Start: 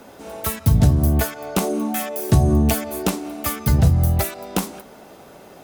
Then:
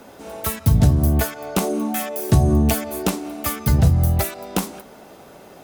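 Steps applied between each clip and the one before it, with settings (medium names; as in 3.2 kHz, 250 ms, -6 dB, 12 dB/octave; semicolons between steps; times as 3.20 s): no audible change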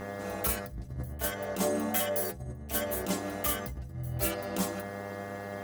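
mains buzz 100 Hz, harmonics 21, -36 dBFS -4 dB/octave; compressor with a negative ratio -22 dBFS, ratio -0.5; inharmonic resonator 61 Hz, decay 0.31 s, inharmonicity 0.008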